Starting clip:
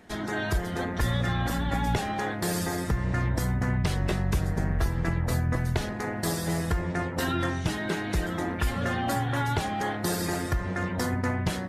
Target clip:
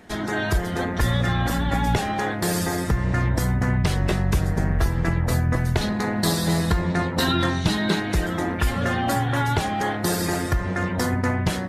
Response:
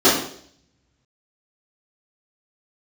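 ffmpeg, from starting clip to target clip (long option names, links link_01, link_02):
-filter_complex "[0:a]asettb=1/sr,asplit=3[link_01][link_02][link_03];[link_01]atrim=end=5.814[link_04];[link_02]atrim=start=5.81:end=8,asetpts=PTS-STARTPTS,afade=type=in:duration=0.004:curve=qsin,afade=type=out:start_time=2.186:duration=0.004:curve=qsin,equalizer=frequency=200:width_type=o:width=0.33:gain=8,equalizer=frequency=1000:width_type=o:width=0.33:gain=3,equalizer=frequency=4000:width_type=o:width=0.33:gain=11[link_05];[link_03]atrim=start=7.996[link_06];[link_04][link_05]acrossfade=duration=0.004:curve1=hsin:curve2=qsin[link_07];[link_07][link_06]acrossfade=duration=0.004:curve1=qsin:curve2=hsin,volume=5dB"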